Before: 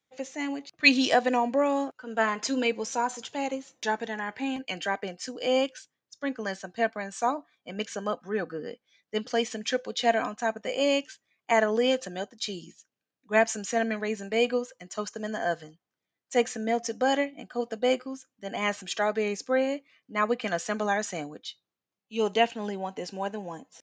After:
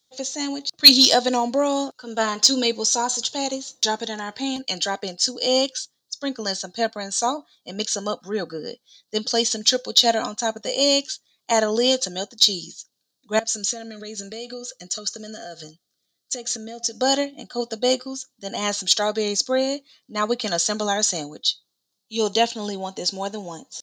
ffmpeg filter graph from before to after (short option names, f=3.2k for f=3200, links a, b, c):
-filter_complex "[0:a]asettb=1/sr,asplit=3[a][b][c];[a]atrim=end=13.394[d];[b]atrim=start=13.39:end=17,asetpts=PTS-STARTPTS,afade=t=in:d=0.004:c=qsin,afade=t=out:st=3.606:d=0.004:c=qsin,acompressor=threshold=-36dB:ratio=5:attack=3.2:release=140:knee=1:detection=peak,asuperstop=centerf=920:order=20:qfactor=2.7[e];[c]atrim=start=16.996[f];[d][e]acrossfade=d=0.004:c1=hsin:c2=qsin[g];[g][f]acrossfade=d=0.004:c1=qsin:c2=hsin,highshelf=f=3.1k:t=q:w=3:g=10,acontrast=27,volume=-1dB"